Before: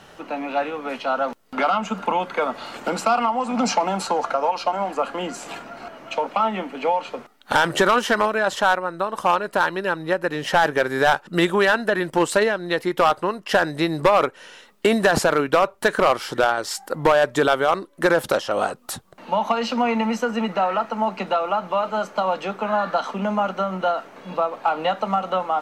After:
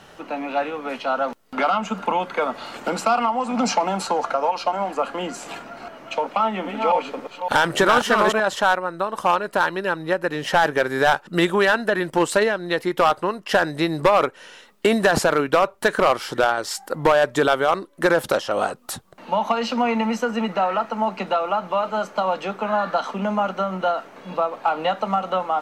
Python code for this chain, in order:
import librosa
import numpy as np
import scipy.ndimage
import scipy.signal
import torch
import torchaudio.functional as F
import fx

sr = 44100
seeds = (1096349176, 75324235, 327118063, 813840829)

y = fx.reverse_delay(x, sr, ms=281, wet_db=-4.0, at=(6.36, 8.4))